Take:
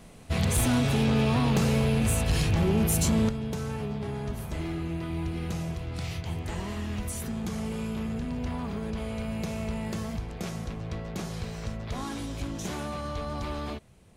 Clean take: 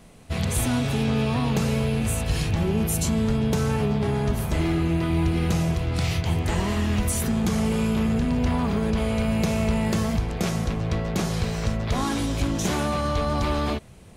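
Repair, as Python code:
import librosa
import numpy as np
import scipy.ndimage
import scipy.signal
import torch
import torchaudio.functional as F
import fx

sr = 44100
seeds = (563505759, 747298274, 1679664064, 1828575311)

y = fx.fix_declip(x, sr, threshold_db=-18.5)
y = fx.fix_level(y, sr, at_s=3.29, step_db=9.5)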